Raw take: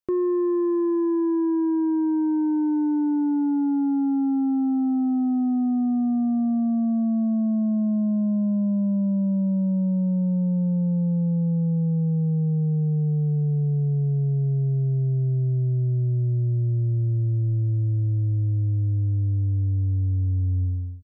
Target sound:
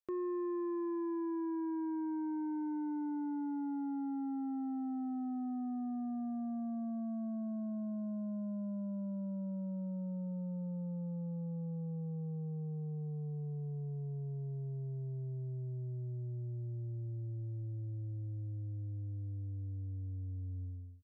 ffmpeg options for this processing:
-af "lowshelf=f=450:g=-11.5,volume=0.422"

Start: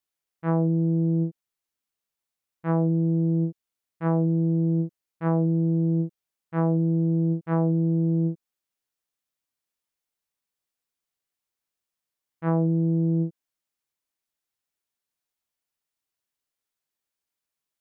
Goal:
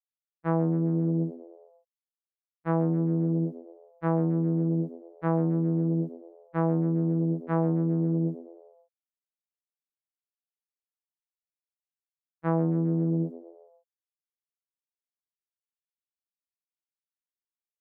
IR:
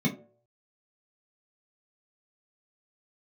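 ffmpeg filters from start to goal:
-filter_complex "[0:a]agate=range=0.0224:threshold=0.0398:ratio=3:detection=peak,lowshelf=f=140:g=-9,asplit=5[s0][s1][s2][s3][s4];[s1]adelay=133,afreqshift=87,volume=0.126[s5];[s2]adelay=266,afreqshift=174,volume=0.0668[s6];[s3]adelay=399,afreqshift=261,volume=0.0355[s7];[s4]adelay=532,afreqshift=348,volume=0.0188[s8];[s0][s5][s6][s7][s8]amix=inputs=5:normalize=0"

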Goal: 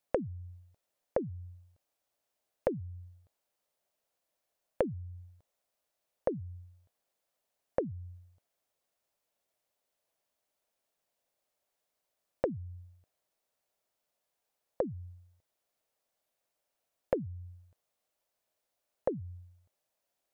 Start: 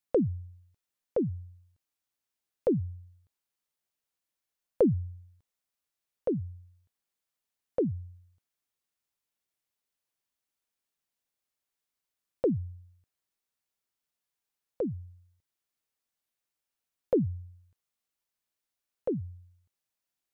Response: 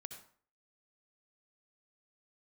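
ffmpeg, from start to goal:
-af "equalizer=f=610:w=1.5:g=13,acompressor=threshold=0.0251:ratio=5,volume=1.26"

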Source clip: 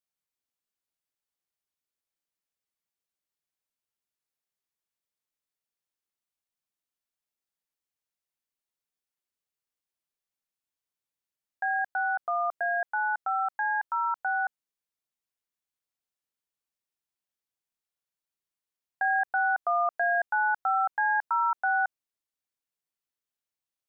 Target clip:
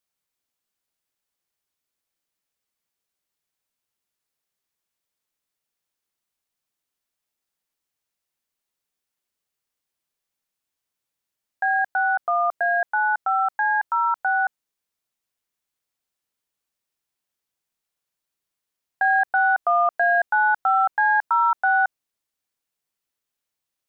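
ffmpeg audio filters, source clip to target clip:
-af "acontrast=77"

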